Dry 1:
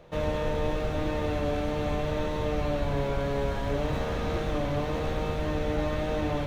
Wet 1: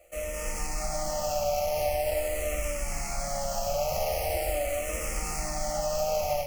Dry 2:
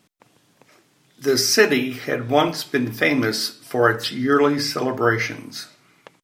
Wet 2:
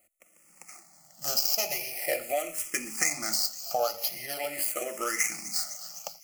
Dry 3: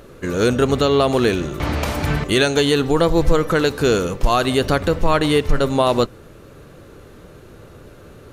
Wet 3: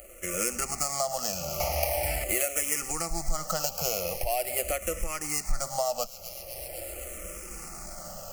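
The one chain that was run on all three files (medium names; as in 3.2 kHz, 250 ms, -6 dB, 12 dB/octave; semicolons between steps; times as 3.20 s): median filter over 15 samples; feedback echo behind a high-pass 253 ms, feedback 67%, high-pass 3.2 kHz, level -18.5 dB; level rider gain up to 10 dB; tilt shelf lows -8.5 dB, about 890 Hz; static phaser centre 430 Hz, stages 6; compression 6:1, threshold -27 dBFS; treble shelf 3.6 kHz +7.5 dB; static phaser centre 1 kHz, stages 6; barber-pole phaser -0.43 Hz; trim +6 dB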